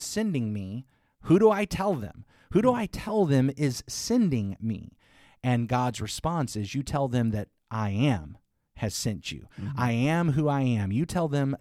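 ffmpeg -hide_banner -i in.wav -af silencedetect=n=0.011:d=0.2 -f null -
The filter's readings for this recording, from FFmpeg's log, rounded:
silence_start: 0.81
silence_end: 1.25 | silence_duration: 0.44
silence_start: 2.21
silence_end: 2.51 | silence_duration: 0.30
silence_start: 4.88
silence_end: 5.44 | silence_duration: 0.55
silence_start: 7.44
silence_end: 7.71 | silence_duration: 0.27
silence_start: 8.33
silence_end: 8.77 | silence_duration: 0.44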